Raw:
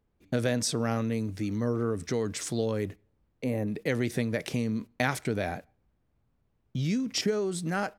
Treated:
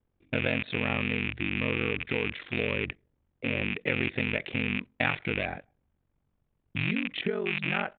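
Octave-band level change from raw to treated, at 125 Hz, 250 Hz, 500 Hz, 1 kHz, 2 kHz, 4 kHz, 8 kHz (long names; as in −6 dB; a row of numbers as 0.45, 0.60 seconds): −3.0 dB, −3.0 dB, −3.0 dB, −1.5 dB, +8.0 dB, +2.0 dB, below −40 dB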